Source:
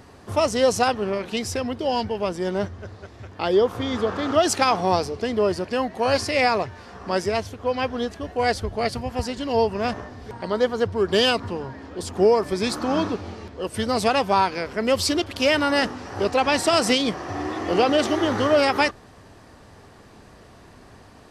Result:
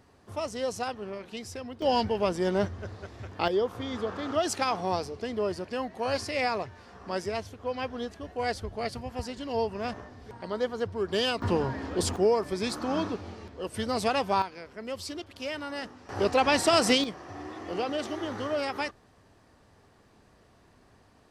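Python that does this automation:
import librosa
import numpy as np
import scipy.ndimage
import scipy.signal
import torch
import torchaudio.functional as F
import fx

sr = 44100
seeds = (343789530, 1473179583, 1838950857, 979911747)

y = fx.gain(x, sr, db=fx.steps((0.0, -12.5), (1.82, -1.5), (3.48, -8.5), (11.42, 3.5), (12.16, -6.5), (14.42, -15.5), (16.09, -3.0), (17.04, -12.0)))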